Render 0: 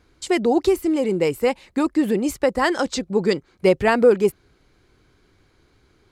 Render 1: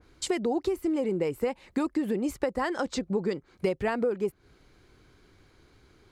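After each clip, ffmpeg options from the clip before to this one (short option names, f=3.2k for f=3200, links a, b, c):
-af "acompressor=threshold=-25dB:ratio=6,adynamicequalizer=threshold=0.00398:dfrequency=2300:dqfactor=0.7:tfrequency=2300:tqfactor=0.7:attack=5:release=100:ratio=0.375:range=4:mode=cutabove:tftype=highshelf"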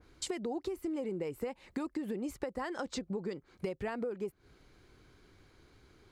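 -af "acompressor=threshold=-34dB:ratio=2.5,volume=-2.5dB"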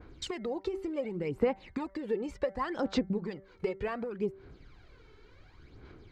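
-af "lowpass=4.1k,bandreject=f=193.5:t=h:w=4,bandreject=f=387:t=h:w=4,bandreject=f=580.5:t=h:w=4,bandreject=f=774:t=h:w=4,bandreject=f=967.5:t=h:w=4,bandreject=f=1.161k:t=h:w=4,bandreject=f=1.3545k:t=h:w=4,bandreject=f=1.548k:t=h:w=4,bandreject=f=1.7415k:t=h:w=4,bandreject=f=1.935k:t=h:w=4,bandreject=f=2.1285k:t=h:w=4,aphaser=in_gain=1:out_gain=1:delay=2.3:decay=0.6:speed=0.68:type=sinusoidal,volume=2.5dB"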